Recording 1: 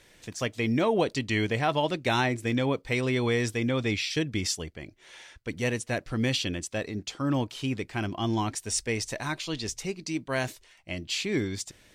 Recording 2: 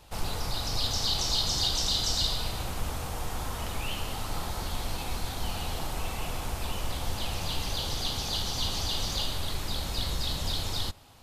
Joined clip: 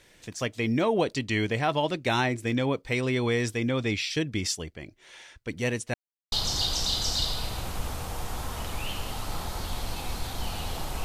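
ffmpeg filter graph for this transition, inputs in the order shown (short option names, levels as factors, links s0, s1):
-filter_complex "[0:a]apad=whole_dur=11.04,atrim=end=11.04,asplit=2[s0][s1];[s0]atrim=end=5.94,asetpts=PTS-STARTPTS,afade=t=out:st=5.936:d=0.004:c=hsin[s2];[s1]atrim=start=5.94:end=6.32,asetpts=PTS-STARTPTS,volume=0[s3];[1:a]atrim=start=1.34:end=6.06,asetpts=PTS-STARTPTS,afade=t=in:d=0.004:c=hsin[s4];[s2][s3][s4]concat=n=3:v=0:a=1"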